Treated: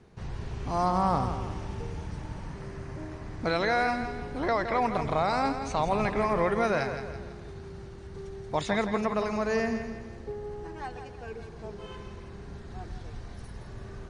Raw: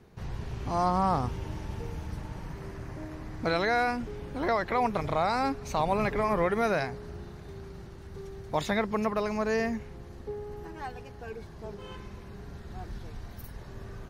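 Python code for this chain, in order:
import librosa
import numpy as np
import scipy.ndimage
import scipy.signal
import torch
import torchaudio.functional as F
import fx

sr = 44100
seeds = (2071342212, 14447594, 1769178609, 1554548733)

p1 = fx.brickwall_lowpass(x, sr, high_hz=10000.0)
y = p1 + fx.echo_feedback(p1, sr, ms=166, feedback_pct=44, wet_db=-9, dry=0)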